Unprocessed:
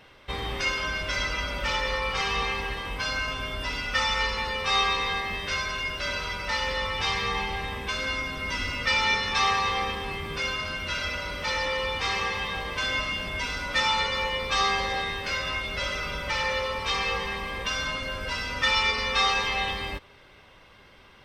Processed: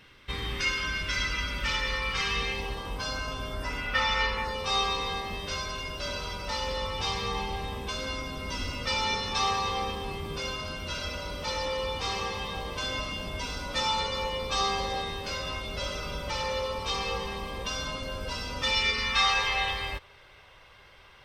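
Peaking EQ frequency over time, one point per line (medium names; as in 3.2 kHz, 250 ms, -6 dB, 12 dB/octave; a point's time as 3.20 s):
peaking EQ -11 dB 1.1 oct
2.31 s 670 Hz
2.77 s 2.1 kHz
3.47 s 2.1 kHz
4.20 s 12 kHz
4.57 s 1.9 kHz
18.60 s 1.9 kHz
19.42 s 240 Hz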